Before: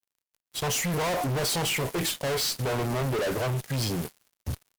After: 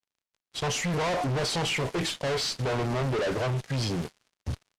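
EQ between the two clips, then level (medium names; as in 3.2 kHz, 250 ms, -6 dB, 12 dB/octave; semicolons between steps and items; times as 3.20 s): low-pass 6.1 kHz 12 dB/octave; 0.0 dB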